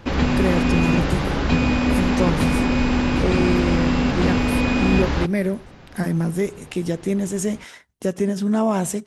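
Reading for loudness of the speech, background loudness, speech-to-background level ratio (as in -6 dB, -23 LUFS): -24.5 LUFS, -20.5 LUFS, -4.0 dB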